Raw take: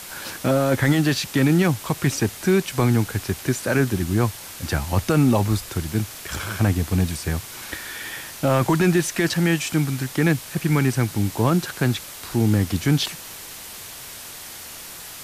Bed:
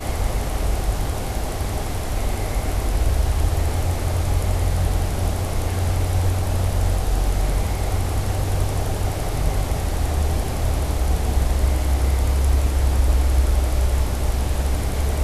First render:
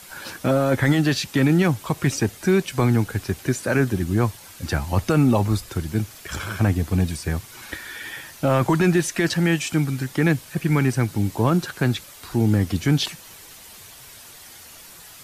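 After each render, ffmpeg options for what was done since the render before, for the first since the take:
-af "afftdn=nr=8:nf=-38"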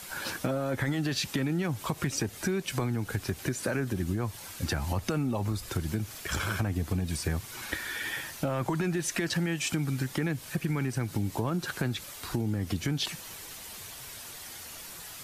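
-af "alimiter=limit=-15.5dB:level=0:latency=1:release=123,acompressor=threshold=-26dB:ratio=6"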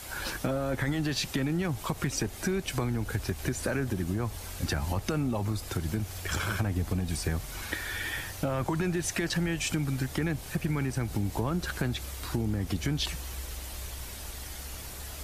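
-filter_complex "[1:a]volume=-22dB[a];[0:a][a]amix=inputs=2:normalize=0"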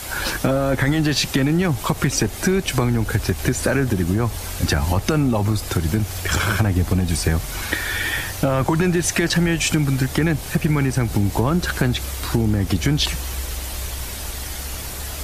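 -af "volume=11dB"

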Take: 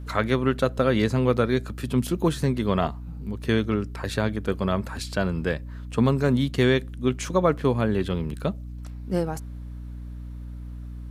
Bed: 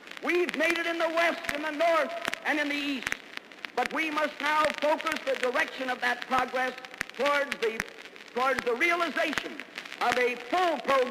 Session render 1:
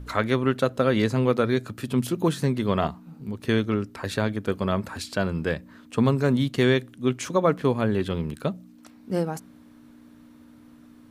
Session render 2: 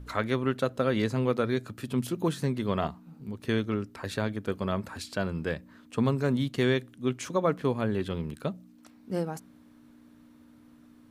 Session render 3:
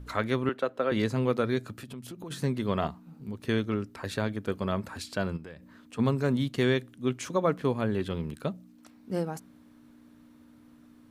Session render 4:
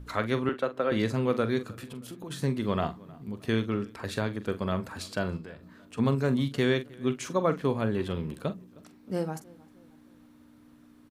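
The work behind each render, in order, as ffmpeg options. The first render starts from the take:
-af "bandreject=f=60:t=h:w=4,bandreject=f=120:t=h:w=4,bandreject=f=180:t=h:w=4"
-af "volume=-5dB"
-filter_complex "[0:a]asettb=1/sr,asplit=3[a][b][c];[a]atrim=end=0.494[d];[b]atrim=start=0.49:end=0.92,asetpts=PTS-STARTPTS,afade=t=in:d=0.004:c=qsin,afade=t=out:st=0.426:d=0.004:c=qsin,acrossover=split=280 3300:gain=0.141 1 0.251[e][f][g];[e][f][g]amix=inputs=3:normalize=0[h];[c]atrim=start=0.916[i];[d][h]acrossfade=d=0.004:c1=hsin:c2=qsin[j];[j][i]acrossfade=d=0.004:c1=qsin:c2=hsin,asplit=3[k][l][m];[k]afade=t=out:st=1.79:d=0.02[n];[l]acompressor=threshold=-39dB:ratio=5:attack=3.2:release=140:knee=1:detection=peak,afade=t=in:st=1.79:d=0.02,afade=t=out:st=2.3:d=0.02[o];[m]afade=t=in:st=2.3:d=0.02[p];[n][o][p]amix=inputs=3:normalize=0,asplit=3[q][r][s];[q]afade=t=out:st=5.36:d=0.02[t];[r]acompressor=threshold=-41dB:ratio=5:attack=3.2:release=140:knee=1:detection=peak,afade=t=in:st=5.36:d=0.02,afade=t=out:st=5.98:d=0.02[u];[s]afade=t=in:st=5.98:d=0.02[v];[t][u][v]amix=inputs=3:normalize=0"
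-filter_complex "[0:a]asplit=2[a][b];[b]adelay=44,volume=-12dB[c];[a][c]amix=inputs=2:normalize=0,asplit=2[d][e];[e]adelay=312,lowpass=f=3k:p=1,volume=-23dB,asplit=2[f][g];[g]adelay=312,lowpass=f=3k:p=1,volume=0.46,asplit=2[h][i];[i]adelay=312,lowpass=f=3k:p=1,volume=0.46[j];[d][f][h][j]amix=inputs=4:normalize=0"

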